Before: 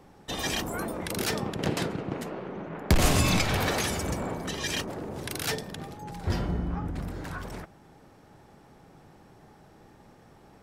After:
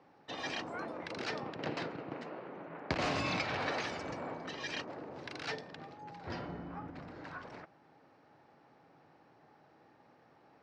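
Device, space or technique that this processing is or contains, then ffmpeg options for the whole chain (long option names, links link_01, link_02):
kitchen radio: -af "highpass=190,equalizer=frequency=200:width_type=q:width=4:gain=-9,equalizer=frequency=390:width_type=q:width=4:gain=-5,equalizer=frequency=3400:width_type=q:width=4:gain=-6,lowpass=frequency=4600:width=0.5412,lowpass=frequency=4600:width=1.3066,volume=-6dB"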